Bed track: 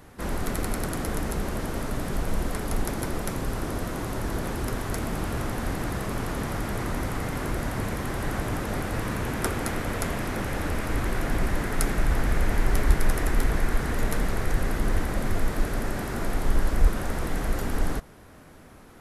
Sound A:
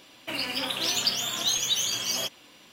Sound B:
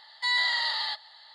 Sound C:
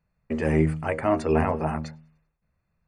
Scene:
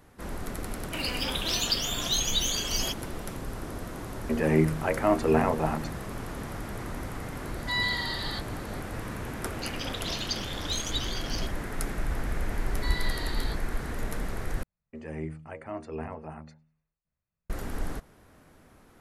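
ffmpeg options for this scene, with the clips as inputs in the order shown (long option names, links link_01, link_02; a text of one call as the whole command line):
ffmpeg -i bed.wav -i cue0.wav -i cue1.wav -i cue2.wav -filter_complex "[1:a]asplit=2[link_01][link_02];[3:a]asplit=2[link_03][link_04];[2:a]asplit=2[link_05][link_06];[0:a]volume=-7dB[link_07];[link_03]highpass=120[link_08];[link_05]aecho=1:1:5.1:0.91[link_09];[link_02]afwtdn=0.0251[link_10];[link_06]flanger=delay=17:depth=2.5:speed=1.8[link_11];[link_07]asplit=2[link_12][link_13];[link_12]atrim=end=14.634[link_14];[link_04]atrim=end=2.87,asetpts=PTS-STARTPTS,volume=-14.5dB[link_15];[link_13]atrim=start=17.496[link_16];[link_01]atrim=end=2.72,asetpts=PTS-STARTPTS,volume=-2dB,afade=type=in:duration=0.004:curve=hsin,afade=type=out:start_time=2.716:duration=0.004:curve=hsin,adelay=650[link_17];[link_08]atrim=end=2.87,asetpts=PTS-STARTPTS,volume=-0.5dB,afade=type=in:duration=0.004:curve=hsin,afade=type=out:start_time=2.866:duration=0.004:curve=hsin,adelay=3990[link_18];[link_09]atrim=end=1.34,asetpts=PTS-STARTPTS,volume=-8dB,afade=type=in:duration=0.004:curve=hsin,afade=type=out:start_time=1.336:duration=0.004:curve=hsin,adelay=7450[link_19];[link_10]atrim=end=2.72,asetpts=PTS-STARTPTS,volume=-6.5dB,afade=type=in:duration=0.004:curve=hsin,afade=type=out:start_time=2.716:duration=0.004:curve=hsin,adelay=9240[link_20];[link_11]atrim=end=1.34,asetpts=PTS-STARTPTS,volume=-8.5dB,afade=type=in:duration=0.004:curve=hsin,afade=type=out:start_time=1.336:duration=0.004:curve=hsin,adelay=12590[link_21];[link_14][link_15]acrossfade=duration=0.004:curve1=hsin:curve2=hsin[link_22];[link_22][link_16]acrossfade=duration=0.004:curve1=hsin:curve2=hsin[link_23];[link_23][link_17][link_18][link_19][link_20][link_21]amix=inputs=6:normalize=0" out.wav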